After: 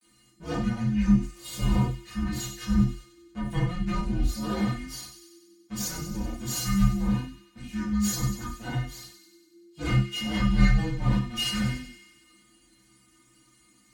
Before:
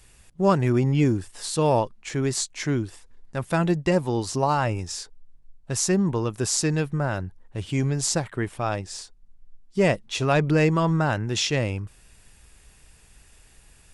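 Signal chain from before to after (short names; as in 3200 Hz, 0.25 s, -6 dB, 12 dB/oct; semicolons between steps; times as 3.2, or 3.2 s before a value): minimum comb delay 9.2 ms; metallic resonator 150 Hz, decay 0.26 s, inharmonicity 0.008; gate with hold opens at -59 dBFS; frequency shift -430 Hz; 1.82–4.21 tone controls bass +8 dB, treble -4 dB; frequency shift -80 Hz; HPF 44 Hz; thin delay 95 ms, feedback 63%, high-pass 2300 Hz, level -9 dB; reverb, pre-delay 5 ms, DRR -5.5 dB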